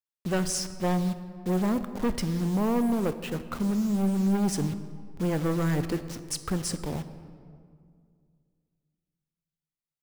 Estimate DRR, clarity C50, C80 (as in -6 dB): 10.5 dB, 12.5 dB, 13.0 dB